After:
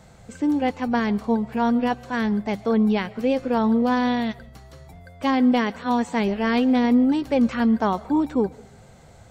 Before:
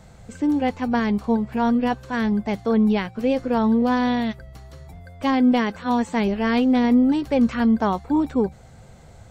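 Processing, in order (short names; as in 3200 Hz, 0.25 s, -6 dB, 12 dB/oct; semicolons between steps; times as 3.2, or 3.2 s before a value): low shelf 110 Hz -6.5 dB; on a send: reverb RT60 0.50 s, pre-delay 85 ms, DRR 21.5 dB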